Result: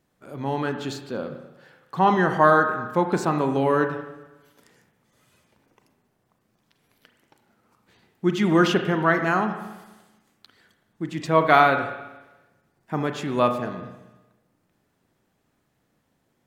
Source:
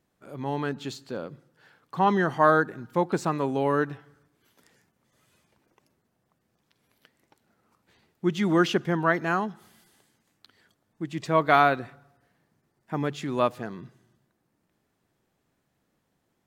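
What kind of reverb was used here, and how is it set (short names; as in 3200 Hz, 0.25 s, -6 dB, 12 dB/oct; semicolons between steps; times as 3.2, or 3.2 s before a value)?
spring tank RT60 1.1 s, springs 33/37 ms, chirp 80 ms, DRR 6 dB; gain +3 dB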